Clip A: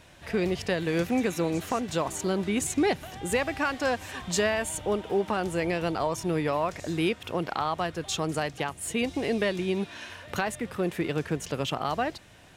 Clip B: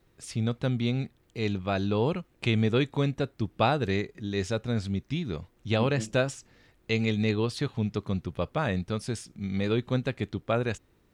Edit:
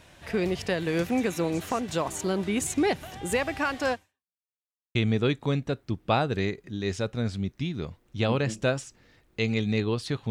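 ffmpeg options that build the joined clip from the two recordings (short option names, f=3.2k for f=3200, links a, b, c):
-filter_complex "[0:a]apad=whole_dur=10.3,atrim=end=10.3,asplit=2[a][b];[a]atrim=end=4.39,asetpts=PTS-STARTPTS,afade=t=out:st=3.92:d=0.47:c=exp[c];[b]atrim=start=4.39:end=4.95,asetpts=PTS-STARTPTS,volume=0[d];[1:a]atrim=start=2.46:end=7.81,asetpts=PTS-STARTPTS,afade=t=in:d=0.004:c=hsin[e];[c][d][e]concat=n=3:v=0:a=1"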